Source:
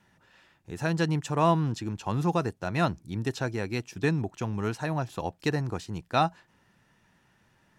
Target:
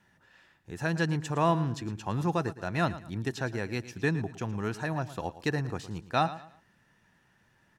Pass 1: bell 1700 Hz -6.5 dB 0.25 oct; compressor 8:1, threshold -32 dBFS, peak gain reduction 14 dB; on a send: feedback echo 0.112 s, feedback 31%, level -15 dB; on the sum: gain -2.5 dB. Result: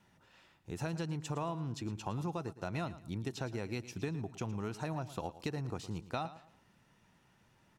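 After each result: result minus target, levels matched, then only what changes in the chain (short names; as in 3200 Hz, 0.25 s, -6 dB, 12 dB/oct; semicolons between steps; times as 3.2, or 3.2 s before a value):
compressor: peak gain reduction +14 dB; 2000 Hz band -4.5 dB
remove: compressor 8:1, threshold -32 dBFS, peak gain reduction 14 dB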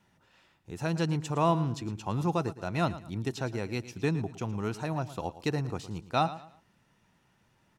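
2000 Hz band -5.0 dB
change: bell 1700 Hz +5 dB 0.25 oct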